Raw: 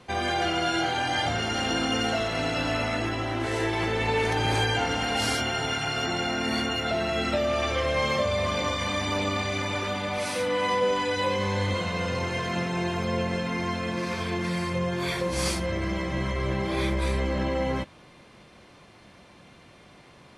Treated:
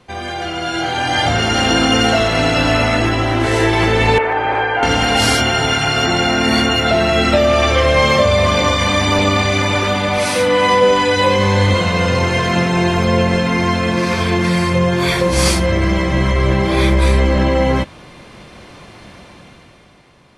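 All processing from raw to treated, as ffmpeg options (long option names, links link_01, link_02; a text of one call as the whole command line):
ffmpeg -i in.wav -filter_complex "[0:a]asettb=1/sr,asplit=3[link_01][link_02][link_03];[link_01]atrim=end=4.184[link_04];[link_02]atrim=start=4.18:end=4.83,asetpts=PTS-STARTPTS,afade=type=in:duration=0.004:curve=qsin,afade=type=out:start_time=0.646:duration=0.004:curve=qsin,acrossover=split=3700[link_05][link_06];[link_06]acompressor=threshold=-50dB:ratio=4:attack=1:release=60[link_07];[link_05][link_07]amix=inputs=2:normalize=0,acrossover=split=410 2300:gain=0.126 1 0.0891[link_08][link_09][link_10];[link_08][link_09][link_10]amix=inputs=3:normalize=0[link_11];[link_03]atrim=start=4.826[link_12];[link_04][link_11]acrossfade=duration=0.004:curve1=hsin:curve2=qsin[link_13];[link_13][link_12]acrossfade=duration=0.004:curve1=qsin:curve2=hsin,lowshelf=frequency=60:gain=6.5,dynaudnorm=framelen=120:gausssize=17:maxgain=12.5dB,volume=1.5dB" out.wav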